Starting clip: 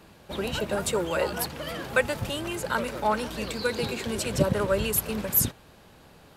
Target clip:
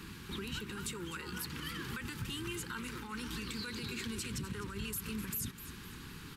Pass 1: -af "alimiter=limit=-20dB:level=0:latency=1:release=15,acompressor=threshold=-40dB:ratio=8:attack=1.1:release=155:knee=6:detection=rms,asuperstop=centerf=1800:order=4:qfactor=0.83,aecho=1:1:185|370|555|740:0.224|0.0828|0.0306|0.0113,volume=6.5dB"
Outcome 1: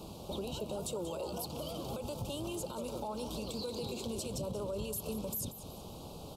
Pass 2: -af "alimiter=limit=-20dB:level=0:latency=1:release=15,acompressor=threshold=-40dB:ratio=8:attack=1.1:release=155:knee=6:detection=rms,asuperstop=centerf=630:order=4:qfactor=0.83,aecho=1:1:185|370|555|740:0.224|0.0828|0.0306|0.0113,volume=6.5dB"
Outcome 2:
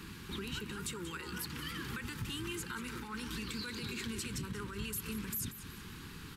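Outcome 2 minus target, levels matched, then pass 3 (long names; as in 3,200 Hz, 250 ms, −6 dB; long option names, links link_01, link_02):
echo 69 ms early
-af "alimiter=limit=-20dB:level=0:latency=1:release=15,acompressor=threshold=-40dB:ratio=8:attack=1.1:release=155:knee=6:detection=rms,asuperstop=centerf=630:order=4:qfactor=0.83,aecho=1:1:254|508|762|1016:0.224|0.0828|0.0306|0.0113,volume=6.5dB"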